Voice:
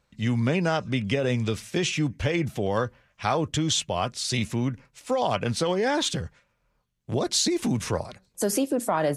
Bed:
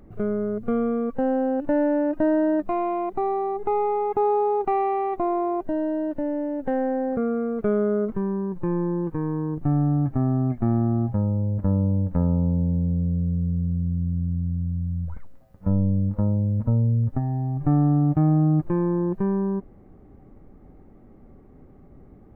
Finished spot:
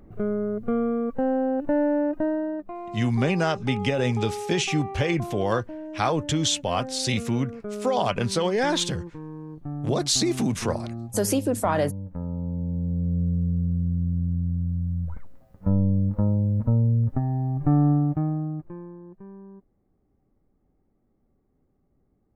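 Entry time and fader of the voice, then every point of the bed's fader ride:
2.75 s, +1.0 dB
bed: 2.05 s -1 dB
2.73 s -11.5 dB
12.11 s -11.5 dB
13.21 s 0 dB
17.90 s 0 dB
19.00 s -20 dB

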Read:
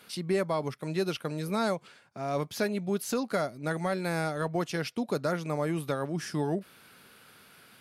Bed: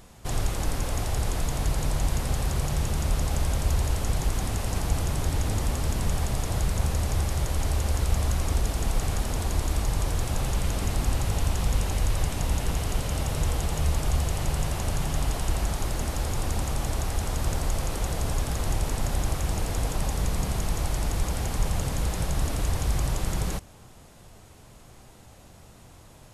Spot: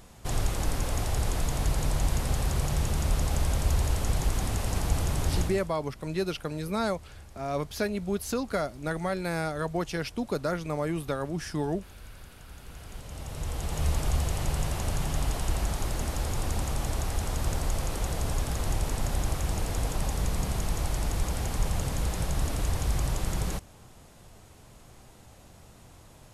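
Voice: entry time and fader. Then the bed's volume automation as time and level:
5.20 s, 0.0 dB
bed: 5.42 s -1 dB
5.73 s -22.5 dB
12.45 s -22.5 dB
13.86 s -2 dB

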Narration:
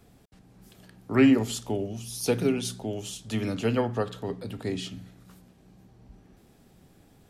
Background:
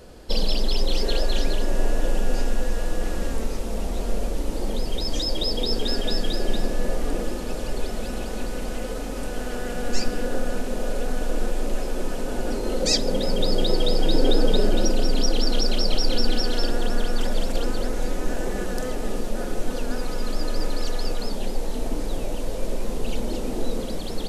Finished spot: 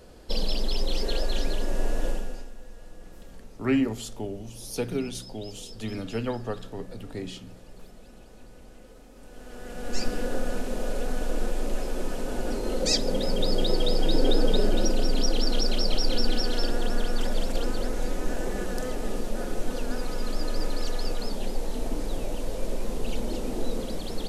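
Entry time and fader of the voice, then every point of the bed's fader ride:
2.50 s, -4.5 dB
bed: 2.09 s -4.5 dB
2.53 s -20.5 dB
9.14 s -20.5 dB
10.06 s -3 dB

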